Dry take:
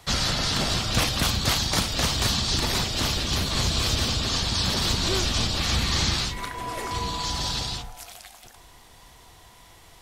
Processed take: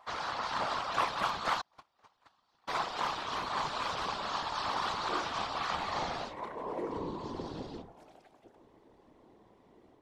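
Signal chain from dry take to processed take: level rider gain up to 3.5 dB; 1.61–2.68 s: gate -14 dBFS, range -38 dB; band-pass sweep 1 kHz -> 340 Hz, 5.67–7.04 s; whisper effect

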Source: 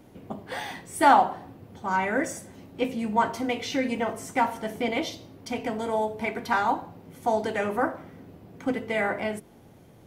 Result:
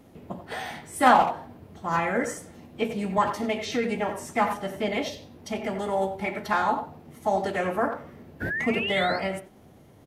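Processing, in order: painted sound rise, 8.41–9.18 s, 1.6–5 kHz -28 dBFS; speakerphone echo 90 ms, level -9 dB; formant-preserving pitch shift -2 st

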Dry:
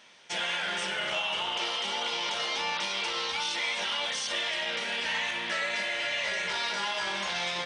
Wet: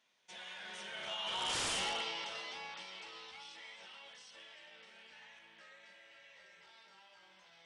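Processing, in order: Doppler pass-by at 1.66 s, 15 m/s, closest 1.6 m; wavefolder -34.5 dBFS; resampled via 22.05 kHz; trim +3.5 dB

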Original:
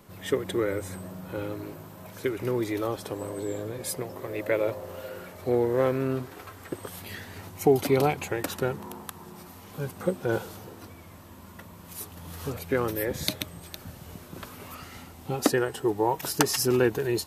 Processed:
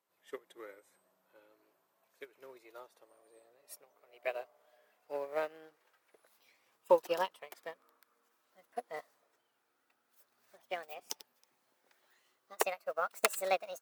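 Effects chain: gliding tape speed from 97% -> 153%; high-pass 550 Hz 12 dB/octave; upward expansion 2.5:1, over -37 dBFS

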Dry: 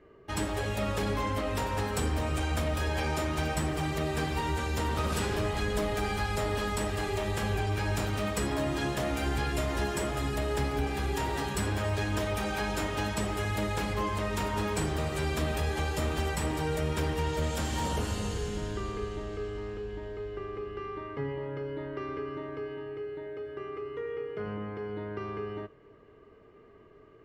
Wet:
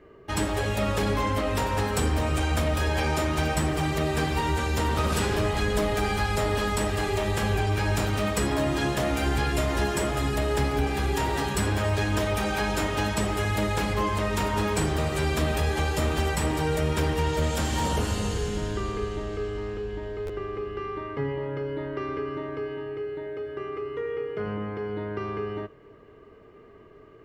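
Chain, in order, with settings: buffer glitch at 20.26 s, samples 512, times 2; trim +5 dB

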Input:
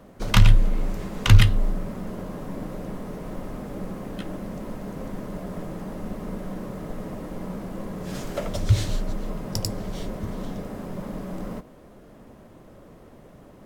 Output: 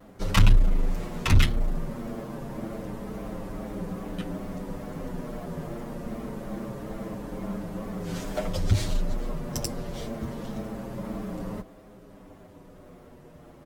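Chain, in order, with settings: one-sided clip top -21 dBFS; wow and flutter 130 cents; endless flanger 7.5 ms -0.25 Hz; trim +2 dB

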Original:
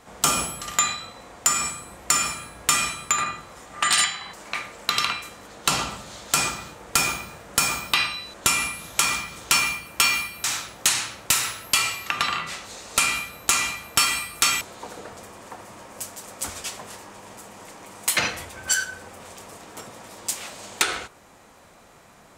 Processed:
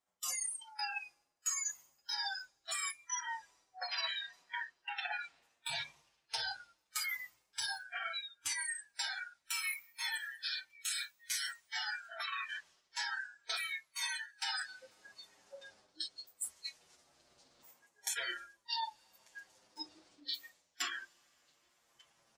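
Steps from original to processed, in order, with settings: sawtooth pitch modulation -10.5 st, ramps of 1356 ms; recorder AGC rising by 8.6 dB/s; on a send: band-passed feedback delay 1194 ms, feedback 47%, band-pass 2.5 kHz, level -16.5 dB; on the sum: algorithmic reverb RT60 4.4 s, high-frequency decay 1×, pre-delay 50 ms, DRR 12.5 dB; spectral noise reduction 29 dB; treble shelf 3.8 kHz +7.5 dB; reverse; compression 5:1, threshold -35 dBFS, peak gain reduction 22.5 dB; reverse; bass shelf 280 Hz -7 dB; band-stop 440 Hz, Q 12; de-hum 49.67 Hz, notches 12; endless flanger 7.6 ms -0.25 Hz

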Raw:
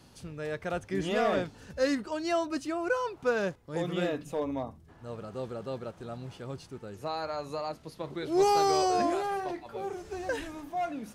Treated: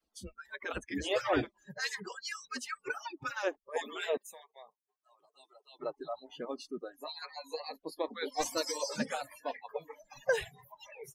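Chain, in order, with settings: harmonic-percussive separation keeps percussive; spectral noise reduction 25 dB; 4.17–5.79 s: differentiator; trim +4 dB

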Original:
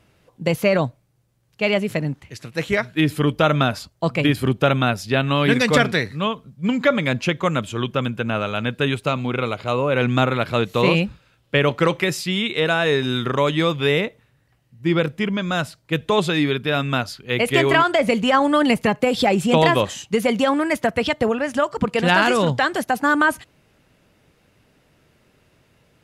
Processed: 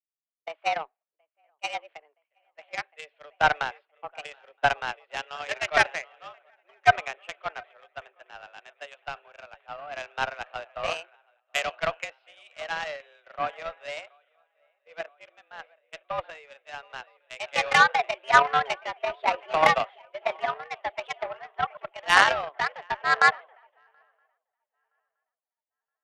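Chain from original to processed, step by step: mistuned SSB +150 Hz 410–2800 Hz; shuffle delay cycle 970 ms, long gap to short 3:1, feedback 47%, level -14 dB; Chebyshev shaper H 5 -35 dB, 7 -19 dB, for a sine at -2 dBFS; three bands expanded up and down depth 100%; trim -6.5 dB

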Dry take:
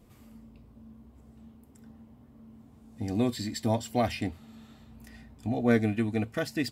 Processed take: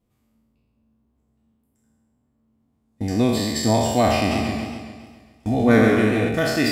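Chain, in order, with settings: spectral sustain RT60 1.42 s; gate -41 dBFS, range -23 dB; 4.17–6.29 s: modulated delay 136 ms, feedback 57%, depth 102 cents, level -5 dB; trim +6.5 dB

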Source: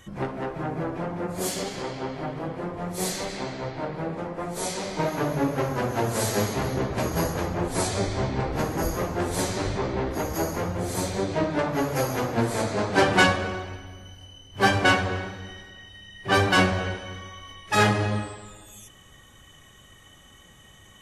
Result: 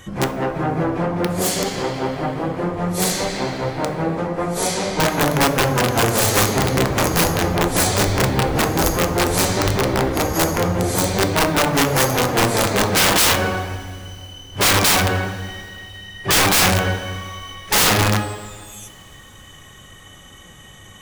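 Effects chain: integer overflow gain 18 dB; two-slope reverb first 0.5 s, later 4.2 s, from -20 dB, DRR 11 dB; trim +8.5 dB

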